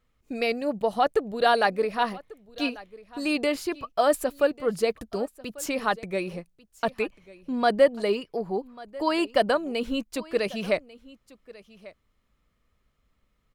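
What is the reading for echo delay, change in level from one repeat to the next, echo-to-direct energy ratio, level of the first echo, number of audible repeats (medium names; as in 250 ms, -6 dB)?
1143 ms, no regular repeats, -20.5 dB, -20.5 dB, 1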